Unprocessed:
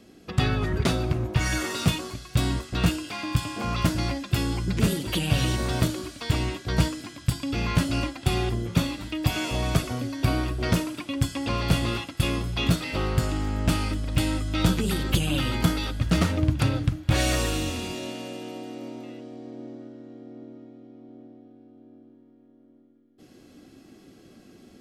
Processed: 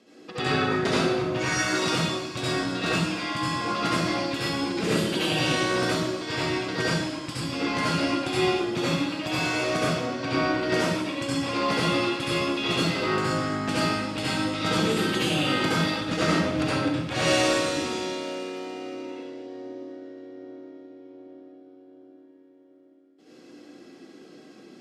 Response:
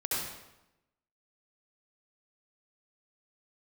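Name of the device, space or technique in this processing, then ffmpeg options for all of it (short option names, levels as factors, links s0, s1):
supermarket ceiling speaker: -filter_complex "[0:a]asettb=1/sr,asplit=3[s0][s1][s2];[s0]atrim=end=5.894[s3];[s1]atrim=start=5.89:end=6.33,asetpts=PTS-STARTPTS,afade=t=in:d=0.004:c=qsin,afade=t=out:st=0.436:d=0.004:c=qsin,equalizer=f=9900:t=o:w=0.44:g=-7[s4];[s2]atrim=start=6.326[s5];[s3][s4]acrossfade=d=0.004:c1=hsin:c2=qsin[s6];[s6][s5]acrossfade=d=0.004:c1=qsin:c2=hsin,asettb=1/sr,asplit=3[s7][s8][s9];[s7]atrim=end=9.824[s10];[s8]atrim=start=9.82:end=10.54,asetpts=PTS-STARTPTS,afade=t=in:d=0.004:c=qsin,afade=t=out:st=0.716:d=0.004:c=qsin,lowpass=6100[s11];[s9]atrim=start=10.536[s12];[s10][s11]acrossfade=d=0.004:c1=hsin:c2=qsin[s13];[s13][s12]acrossfade=d=0.004:c1=qsin:c2=hsin,highpass=270,lowpass=7000[s14];[1:a]atrim=start_sample=2205[s15];[s14][s15]afir=irnorm=-1:irlink=0,volume=0.841"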